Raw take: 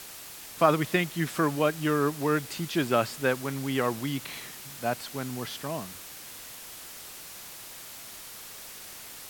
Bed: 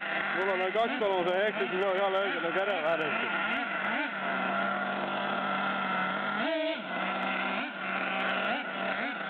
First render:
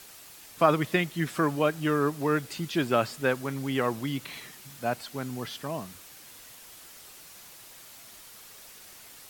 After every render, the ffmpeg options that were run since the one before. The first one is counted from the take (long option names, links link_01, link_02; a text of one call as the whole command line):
ffmpeg -i in.wav -af "afftdn=noise_reduction=6:noise_floor=-44" out.wav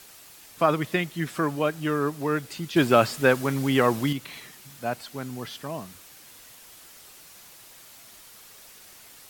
ffmpeg -i in.wav -filter_complex "[0:a]asettb=1/sr,asplit=3[link_01][link_02][link_03];[link_01]atrim=end=2.764[link_04];[link_02]atrim=start=2.76:end=4.13,asetpts=PTS-STARTPTS,afade=type=in:duration=0.004:curve=qsin,afade=type=out:start_time=1.366:duration=0.004:curve=qsin,acontrast=74[link_05];[link_03]atrim=start=4.126[link_06];[link_04][link_05]acrossfade=duration=0.004:curve1=hsin:curve2=qsin[link_07];[link_07][link_06]acrossfade=duration=0.004:curve1=qsin:curve2=hsin" out.wav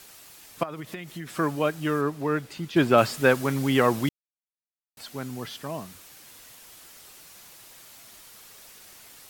ffmpeg -i in.wav -filter_complex "[0:a]asettb=1/sr,asplit=3[link_01][link_02][link_03];[link_01]atrim=end=0.634[link_04];[link_02]atrim=start=0.63:end=1.38,asetpts=PTS-STARTPTS,afade=type=in:duration=0.004:curve=qsin,afade=type=out:start_time=0.746:duration=0.004:curve=qsin,acompressor=threshold=-32dB:ratio=8:attack=3.2:release=140:knee=1:detection=peak[link_05];[link_03]atrim=start=1.376[link_06];[link_04][link_05]acrossfade=duration=0.004:curve1=hsin:curve2=qsin[link_07];[link_07][link_06]acrossfade=duration=0.004:curve1=qsin:curve2=hsin,asettb=1/sr,asplit=3[link_08][link_09][link_10];[link_08]atrim=end=2.014[link_11];[link_09]atrim=start=2.01:end=2.98,asetpts=PTS-STARTPTS,afade=type=in:duration=0.004:curve=qsin,afade=type=out:start_time=0.966:duration=0.004:curve=qsin,highshelf=frequency=4100:gain=-7.5[link_12];[link_10]atrim=start=2.976[link_13];[link_11][link_12]acrossfade=duration=0.004:curve1=hsin:curve2=qsin[link_14];[link_14][link_13]acrossfade=duration=0.004:curve1=qsin:curve2=hsin,asplit=3[link_15][link_16][link_17];[link_15]atrim=end=4.09,asetpts=PTS-STARTPTS,afade=type=out:start_time=4.086:duration=0.004:curve=hsin[link_18];[link_16]atrim=start=4.09:end=4.97,asetpts=PTS-STARTPTS,volume=0[link_19];[link_17]atrim=start=4.97,asetpts=PTS-STARTPTS,afade=type=in:duration=0.004:curve=hsin[link_20];[link_18][link_19][link_20]concat=n=3:v=0:a=1" out.wav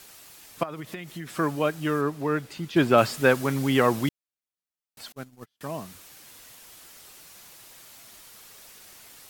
ffmpeg -i in.wav -filter_complex "[0:a]asettb=1/sr,asplit=3[link_01][link_02][link_03];[link_01]atrim=end=5.124[link_04];[link_02]atrim=start=5.12:end=5.61,asetpts=PTS-STARTPTS,afade=type=in:duration=0.004:curve=qsin,afade=type=out:start_time=0.486:duration=0.004:curve=qsin,agate=range=-40dB:threshold=-33dB:ratio=16:release=100:detection=peak[link_05];[link_03]atrim=start=5.606[link_06];[link_04][link_05]acrossfade=duration=0.004:curve1=hsin:curve2=qsin[link_07];[link_07][link_06]acrossfade=duration=0.004:curve1=qsin:curve2=hsin" out.wav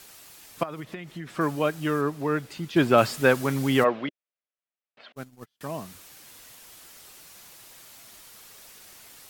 ffmpeg -i in.wav -filter_complex "[0:a]asettb=1/sr,asplit=3[link_01][link_02][link_03];[link_01]atrim=end=0.844[link_04];[link_02]atrim=start=0.84:end=1.41,asetpts=PTS-STARTPTS,afade=type=in:duration=0.004:curve=qsin,afade=type=out:start_time=0.566:duration=0.004:curve=qsin,lowpass=frequency=3200:poles=1[link_05];[link_03]atrim=start=1.406[link_06];[link_04][link_05]acrossfade=duration=0.004:curve1=hsin:curve2=qsin[link_07];[link_07][link_06]acrossfade=duration=0.004:curve1=qsin:curve2=hsin,asplit=3[link_08][link_09][link_10];[link_08]afade=type=out:start_time=3.83:duration=0.02[link_11];[link_09]highpass=300,equalizer=frequency=320:width_type=q:width=4:gain=-4,equalizer=frequency=600:width_type=q:width=4:gain=5,equalizer=frequency=880:width_type=q:width=4:gain=-5,lowpass=frequency=3100:width=0.5412,lowpass=frequency=3100:width=1.3066,afade=type=in:start_time=3.83:duration=0.02,afade=type=out:start_time=5.15:duration=0.02[link_12];[link_10]afade=type=in:start_time=5.15:duration=0.02[link_13];[link_11][link_12][link_13]amix=inputs=3:normalize=0" out.wav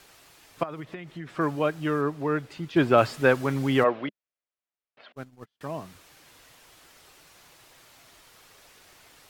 ffmpeg -i in.wav -af "lowpass=frequency=3100:poles=1,equalizer=frequency=210:width_type=o:width=0.25:gain=-8" out.wav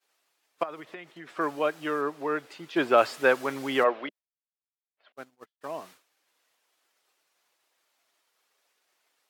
ffmpeg -i in.wav -af "agate=range=-33dB:threshold=-42dB:ratio=3:detection=peak,highpass=390" out.wav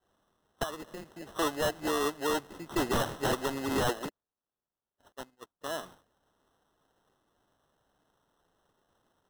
ffmpeg -i in.wav -af "acrusher=samples=19:mix=1:aa=0.000001,aeval=exprs='0.0794*(abs(mod(val(0)/0.0794+3,4)-2)-1)':channel_layout=same" out.wav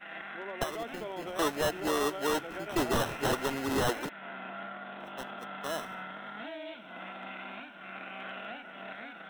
ffmpeg -i in.wav -i bed.wav -filter_complex "[1:a]volume=-11.5dB[link_01];[0:a][link_01]amix=inputs=2:normalize=0" out.wav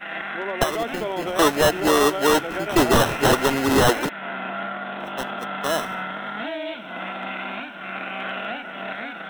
ffmpeg -i in.wav -af "volume=12dB" out.wav